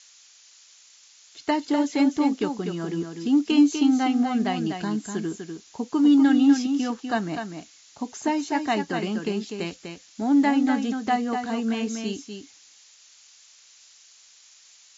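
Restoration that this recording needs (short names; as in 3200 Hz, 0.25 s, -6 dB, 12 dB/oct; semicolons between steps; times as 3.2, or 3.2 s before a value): noise print and reduce 14 dB; inverse comb 0.247 s -6.5 dB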